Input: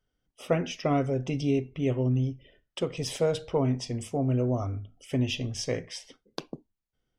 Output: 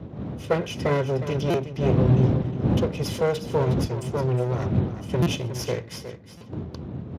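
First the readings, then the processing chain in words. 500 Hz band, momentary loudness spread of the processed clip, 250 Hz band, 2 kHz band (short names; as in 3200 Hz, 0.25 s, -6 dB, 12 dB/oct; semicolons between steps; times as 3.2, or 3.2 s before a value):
+4.5 dB, 15 LU, +3.5 dB, +5.0 dB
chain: minimum comb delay 2 ms; wind noise 190 Hz -30 dBFS; on a send: echo 0.362 s -11 dB; on the sum: stuck buffer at 1.5/5.22/6.37, samples 256, times 6; gain +3.5 dB; Speex 36 kbps 32000 Hz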